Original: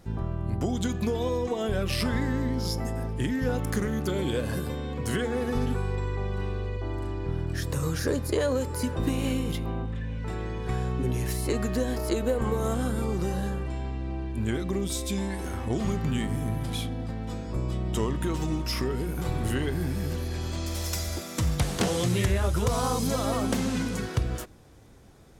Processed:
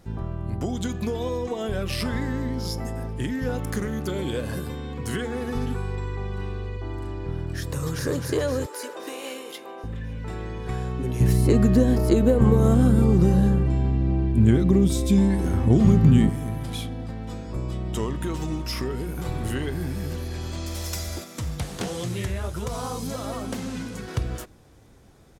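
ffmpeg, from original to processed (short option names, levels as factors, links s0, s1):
-filter_complex "[0:a]asettb=1/sr,asplit=3[s0][s1][s2];[s0]atrim=end=4.644[s3];[s1]atrim=start=4.64:end=7.07,asetpts=PTS-STARTPTS,afade=t=in:d=0.004:c=qsin,afade=t=out:st=2.426:d=0.004:c=qsin,equalizer=f=570:t=o:w=0.23:g=-9[s4];[s2]atrim=start=7.066[s5];[s3][s4]acrossfade=d=0.004:c1=hsin:c2=qsin[s6];[s6][s5]acrossfade=d=0.004:c1=qsin:c2=hsin,asplit=2[s7][s8];[s8]afade=t=in:st=7.6:d=0.01,afade=t=out:st=8.12:d=0.01,aecho=0:1:260|520|780|1040|1300|1560|1820|2080|2340|2600:0.562341|0.365522|0.237589|0.154433|0.100381|0.0652479|0.0424112|0.0275673|0.0179187|0.0116472[s9];[s7][s9]amix=inputs=2:normalize=0,asettb=1/sr,asplit=3[s10][s11][s12];[s10]atrim=end=8.664[s13];[s11]atrim=start=8.66:end=9.84,asetpts=PTS-STARTPTS,afade=t=in:d=0.004:c=qsin,afade=t=out:st=1.176:d=0.004:c=qsin,highpass=f=390:w=0.5412,highpass=f=390:w=1.3066[s14];[s12]atrim=start=9.836[s15];[s13][s14]acrossfade=d=0.004:c1=hsin:c2=qsin[s16];[s16][s15]acrossfade=d=0.004:c1=qsin:c2=hsin,asettb=1/sr,asplit=3[s17][s18][s19];[s17]atrim=end=11.204[s20];[s18]atrim=start=11.2:end=16.3,asetpts=PTS-STARTPTS,afade=t=in:d=0.004:c=qsin,afade=t=out:st=5.096:d=0.004:c=qsin,equalizer=f=140:w=0.38:g=14[s21];[s19]atrim=start=16.296[s22];[s20][s21]acrossfade=d=0.004:c1=hsin:c2=qsin[s23];[s23][s22]acrossfade=d=0.004:c1=qsin:c2=hsin,asettb=1/sr,asplit=3[s24][s25][s26];[s24]atrim=end=21.244[s27];[s25]atrim=start=21.24:end=24.08,asetpts=PTS-STARTPTS,afade=t=in:d=0.004:c=qsin,afade=t=out:st=2.836:d=0.004:c=qsin,flanger=delay=5.2:depth=6.3:regen=-68:speed=1.4:shape=sinusoidal[s28];[s26]atrim=start=24.076[s29];[s27][s28]acrossfade=d=0.004:c1=hsin:c2=qsin[s30];[s30][s29]acrossfade=d=0.004:c1=qsin:c2=hsin"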